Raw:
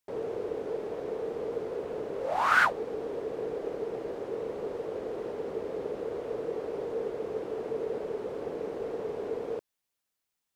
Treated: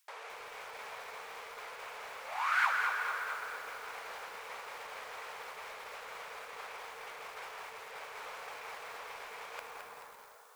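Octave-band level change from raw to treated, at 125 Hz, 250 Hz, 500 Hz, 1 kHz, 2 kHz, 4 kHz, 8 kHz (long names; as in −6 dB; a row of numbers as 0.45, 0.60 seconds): below −20 dB, −28.0 dB, −19.0 dB, −4.0 dB, −2.5 dB, +0.5 dB, can't be measured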